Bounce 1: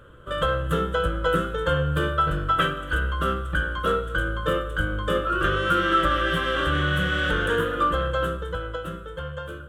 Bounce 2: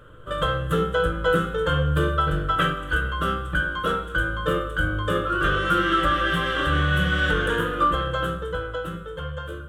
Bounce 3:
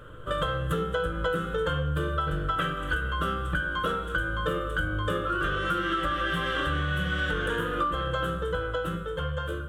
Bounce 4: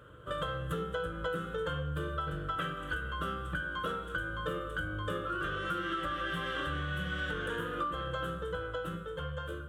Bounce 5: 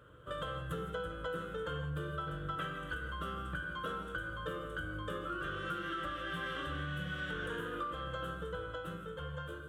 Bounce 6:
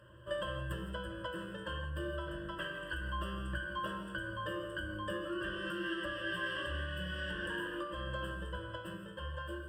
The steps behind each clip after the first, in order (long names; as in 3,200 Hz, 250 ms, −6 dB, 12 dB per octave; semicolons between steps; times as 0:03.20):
convolution reverb RT60 0.35 s, pre-delay 7 ms, DRR 6 dB
downward compressor, threshold −27 dBFS, peak gain reduction 10.5 dB; level +2 dB
high-pass filter 58 Hz; level −7 dB
reverb whose tail is shaped and stops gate 190 ms rising, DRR 8 dB; level −4.5 dB
EQ curve with evenly spaced ripples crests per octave 1.3, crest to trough 18 dB; level −2.5 dB